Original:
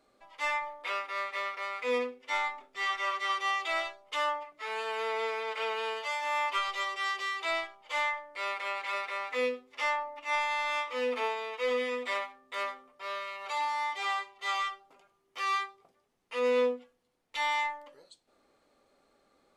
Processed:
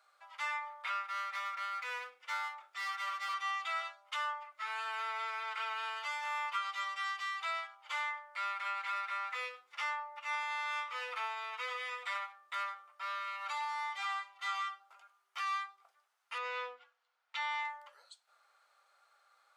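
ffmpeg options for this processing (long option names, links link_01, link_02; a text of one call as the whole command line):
ffmpeg -i in.wav -filter_complex "[0:a]asettb=1/sr,asplit=3[link_01][link_02][link_03];[link_01]atrim=end=1.044[link_04];[link_02]atrim=start=1.04:end=3.34,asetpts=PTS-STARTPTS,afade=type=in:duration=0.004:curve=qsin,afade=type=out:start_time=2.296:duration=0.004:curve=qsin,aeval=exprs='clip(val(0),-1,0.0126)':channel_layout=same[link_05];[link_03]atrim=start=3.336[link_06];[link_04][link_05]acrossfade=duration=0.004:curve1=hsin:curve2=qsin[link_07];[link_07][link_06]acrossfade=duration=0.004:curve1=qsin:curve2=hsin,asettb=1/sr,asplit=3[link_08][link_09][link_10];[link_08]atrim=end=16.384[link_11];[link_09]atrim=start=16.38:end=17.65,asetpts=PTS-STARTPTS,afade=type=in:duration=0.004:curve=qsin,afade=type=out:start_time=1.266:duration=0.004:curve=qsin,highpass=150,lowpass=4900[link_12];[link_10]atrim=start=17.646[link_13];[link_11][link_12]acrossfade=duration=0.004:curve1=hsin:curve2=qsin[link_14];[link_14][link_13]acrossfade=duration=0.004:curve1=qsin:curve2=hsin,highpass=frequency=780:width=0.5412,highpass=frequency=780:width=1.3066,equalizer=frequency=1400:width=4.6:gain=10,acompressor=threshold=-40dB:ratio=2" out.wav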